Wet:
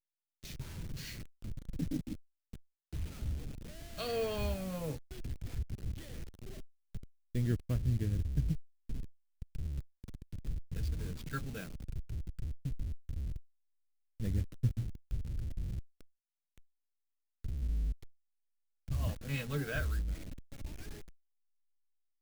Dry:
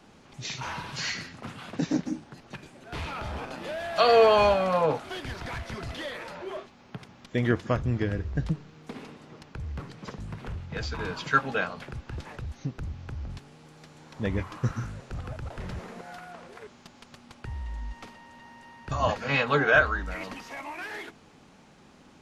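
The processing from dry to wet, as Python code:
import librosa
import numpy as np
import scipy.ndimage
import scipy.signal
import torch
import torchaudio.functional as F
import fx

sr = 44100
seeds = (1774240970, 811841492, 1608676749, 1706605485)

y = fx.delta_hold(x, sr, step_db=-30.5)
y = fx.tone_stack(y, sr, knobs='10-0-1')
y = F.gain(torch.from_numpy(y), 9.0).numpy()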